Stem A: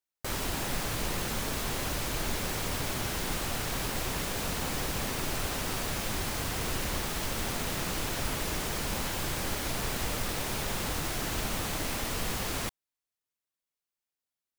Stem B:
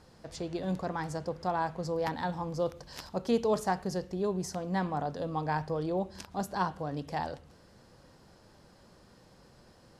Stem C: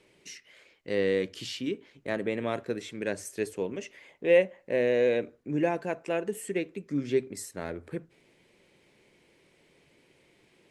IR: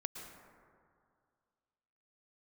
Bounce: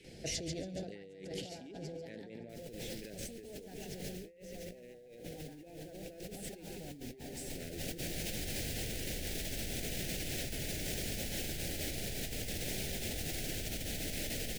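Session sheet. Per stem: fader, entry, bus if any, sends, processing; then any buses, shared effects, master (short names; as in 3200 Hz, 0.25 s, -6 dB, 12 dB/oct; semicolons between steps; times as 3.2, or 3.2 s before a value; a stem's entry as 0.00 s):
-10.0 dB, 2.25 s, no send, echo send -8.5 dB, dry
-1.0 dB, 0.00 s, no send, echo send -5.5 dB, compressor 2:1, threshold -37 dBFS, peak gain reduction 8.5 dB; gate with hold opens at -48 dBFS
-1.5 dB, 0.00 s, no send, echo send -14.5 dB, stepped notch 8.7 Hz 660–3200 Hz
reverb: off
echo: feedback echo 0.141 s, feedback 60%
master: negative-ratio compressor -43 dBFS, ratio -1; Butterworth band-stop 1100 Hz, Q 0.9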